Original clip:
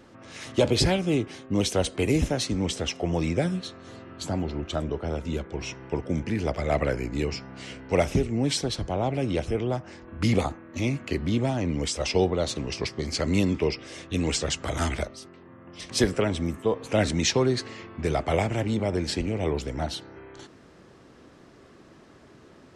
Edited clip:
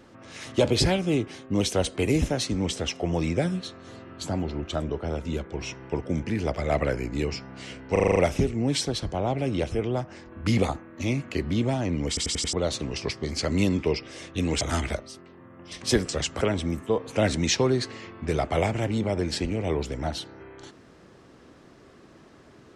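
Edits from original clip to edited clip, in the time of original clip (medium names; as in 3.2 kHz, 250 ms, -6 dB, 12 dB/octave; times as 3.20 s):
7.92 s: stutter 0.04 s, 7 plays
11.84 s: stutter in place 0.09 s, 5 plays
14.37–14.69 s: move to 16.17 s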